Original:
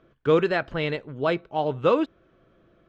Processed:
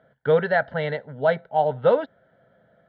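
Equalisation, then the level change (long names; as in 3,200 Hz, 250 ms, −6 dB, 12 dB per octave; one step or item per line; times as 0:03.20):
band-pass filter 160–2,200 Hz
phaser with its sweep stopped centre 1,700 Hz, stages 8
+6.5 dB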